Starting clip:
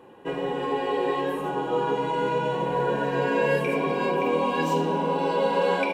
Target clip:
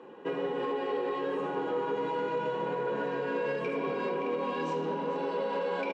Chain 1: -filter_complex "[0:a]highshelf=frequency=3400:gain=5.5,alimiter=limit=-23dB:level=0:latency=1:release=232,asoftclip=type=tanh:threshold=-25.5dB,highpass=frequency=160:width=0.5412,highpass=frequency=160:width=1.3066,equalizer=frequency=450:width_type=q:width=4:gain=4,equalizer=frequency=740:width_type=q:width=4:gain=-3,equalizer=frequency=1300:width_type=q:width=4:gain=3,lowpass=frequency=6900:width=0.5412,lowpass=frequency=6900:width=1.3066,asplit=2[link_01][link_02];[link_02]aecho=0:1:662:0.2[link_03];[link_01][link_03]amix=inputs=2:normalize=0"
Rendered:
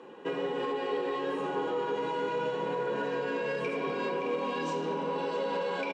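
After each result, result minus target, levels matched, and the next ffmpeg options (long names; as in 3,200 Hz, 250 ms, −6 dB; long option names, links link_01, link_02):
echo 225 ms late; 8,000 Hz band +7.0 dB
-filter_complex "[0:a]highshelf=frequency=3400:gain=5.5,alimiter=limit=-23dB:level=0:latency=1:release=232,asoftclip=type=tanh:threshold=-25.5dB,highpass=frequency=160:width=0.5412,highpass=frequency=160:width=1.3066,equalizer=frequency=450:width_type=q:width=4:gain=4,equalizer=frequency=740:width_type=q:width=4:gain=-3,equalizer=frequency=1300:width_type=q:width=4:gain=3,lowpass=frequency=6900:width=0.5412,lowpass=frequency=6900:width=1.3066,asplit=2[link_01][link_02];[link_02]aecho=0:1:437:0.2[link_03];[link_01][link_03]amix=inputs=2:normalize=0"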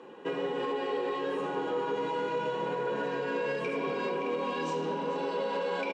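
8,000 Hz band +7.0 dB
-filter_complex "[0:a]highshelf=frequency=3400:gain=-4,alimiter=limit=-23dB:level=0:latency=1:release=232,asoftclip=type=tanh:threshold=-25.5dB,highpass=frequency=160:width=0.5412,highpass=frequency=160:width=1.3066,equalizer=frequency=450:width_type=q:width=4:gain=4,equalizer=frequency=740:width_type=q:width=4:gain=-3,equalizer=frequency=1300:width_type=q:width=4:gain=3,lowpass=frequency=6900:width=0.5412,lowpass=frequency=6900:width=1.3066,asplit=2[link_01][link_02];[link_02]aecho=0:1:437:0.2[link_03];[link_01][link_03]amix=inputs=2:normalize=0"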